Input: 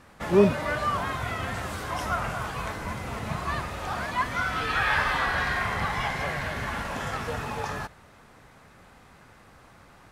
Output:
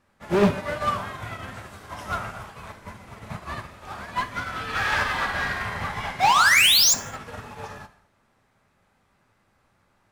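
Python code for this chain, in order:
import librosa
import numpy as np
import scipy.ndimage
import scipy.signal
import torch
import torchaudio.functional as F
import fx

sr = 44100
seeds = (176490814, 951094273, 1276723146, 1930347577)

p1 = 10.0 ** (-23.0 / 20.0) * np.tanh(x / 10.0 ** (-23.0 / 20.0))
p2 = x + (p1 * 10.0 ** (-11.0 / 20.0))
p3 = fx.spec_paint(p2, sr, seeds[0], shape='rise', start_s=6.2, length_s=0.74, low_hz=690.0, high_hz=7500.0, level_db=-13.0)
p4 = np.clip(p3, -10.0 ** (-20.5 / 20.0), 10.0 ** (-20.5 / 20.0))
p5 = fx.rev_gated(p4, sr, seeds[1], gate_ms=250, shape='falling', drr_db=4.5)
p6 = fx.upward_expand(p5, sr, threshold_db=-33.0, expansion=2.5)
y = p6 * 10.0 ** (5.0 / 20.0)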